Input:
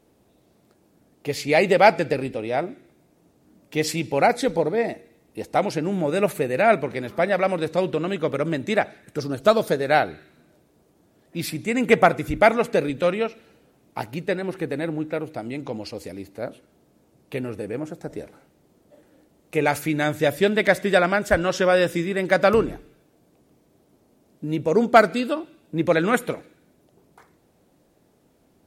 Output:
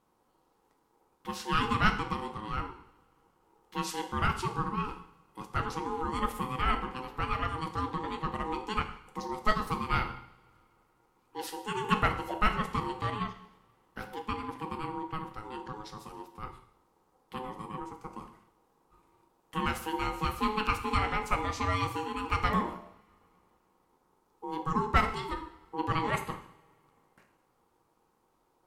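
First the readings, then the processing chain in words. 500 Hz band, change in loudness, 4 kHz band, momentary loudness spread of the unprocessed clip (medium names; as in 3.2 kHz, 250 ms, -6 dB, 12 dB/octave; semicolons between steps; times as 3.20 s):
-19.0 dB, -10.5 dB, -6.5 dB, 16 LU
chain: two-slope reverb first 0.64 s, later 3.1 s, from -27 dB, DRR 5.5 dB; ring modulator 640 Hz; trim -8.5 dB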